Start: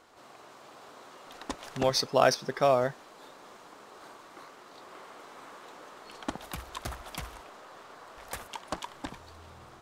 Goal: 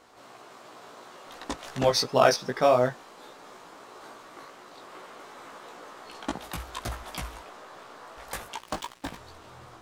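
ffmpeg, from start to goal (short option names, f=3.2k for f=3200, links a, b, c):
-filter_complex "[0:a]asettb=1/sr,asplit=3[a][b][c];[a]atrim=end=8.574[d];[b]atrim=start=8.57:end=9.17,asetpts=PTS-STARTPTS,afade=t=in:d=0.004:c=qsin,afade=t=out:st=0.596:d=0.004:c=qsin,acrusher=bits=6:mix=0:aa=0.5[e];[c]atrim=start=9.166[f];[d][e]acrossfade=d=0.004:c1=hsin:c2=qsin[g];[g][f]acrossfade=d=0.004:c1=qsin:c2=hsin,flanger=delay=16:depth=2.2:speed=2.8,volume=6dB"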